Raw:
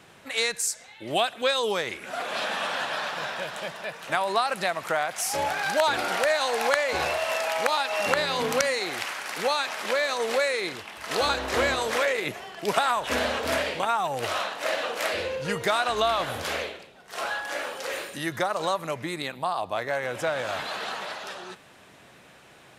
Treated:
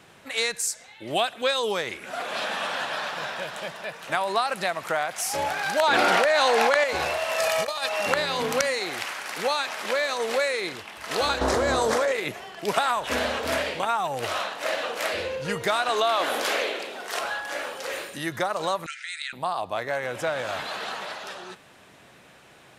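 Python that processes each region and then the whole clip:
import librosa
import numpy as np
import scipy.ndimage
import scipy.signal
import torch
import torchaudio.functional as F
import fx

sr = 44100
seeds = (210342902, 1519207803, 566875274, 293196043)

y = fx.chain(x, sr, fx.highpass(hz=140.0, slope=24),
    fx.high_shelf(hz=7100.0, db=-9.5),
    fx.env_flatten(amount_pct=100), at=(5.83, 6.84))
y = fx.chain(y, sr, fx.bass_treble(bass_db=8, treble_db=5),
    fx.over_compress(threshold_db=-27.0, ratio=-0.5),
    fx.comb(ms=1.7, depth=0.55), at=(7.38, 7.89))
y = fx.chain(y, sr, fx.lowpass(hz=9300.0, slope=12),
    fx.peak_eq(hz=2600.0, db=-12.0, octaves=1.3),
    fx.env_flatten(amount_pct=100), at=(11.41, 12.12))
y = fx.chain(y, sr, fx.highpass(hz=260.0, slope=24),
    fx.env_flatten(amount_pct=50), at=(15.89, 17.19))
y = fx.chain(y, sr, fx.brickwall_bandpass(low_hz=1300.0, high_hz=9700.0),
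    fx.env_flatten(amount_pct=50), at=(18.86, 19.33))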